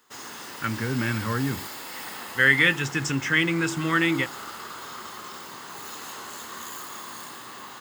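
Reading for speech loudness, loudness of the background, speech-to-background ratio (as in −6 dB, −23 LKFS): −23.5 LKFS, −37.0 LKFS, 13.5 dB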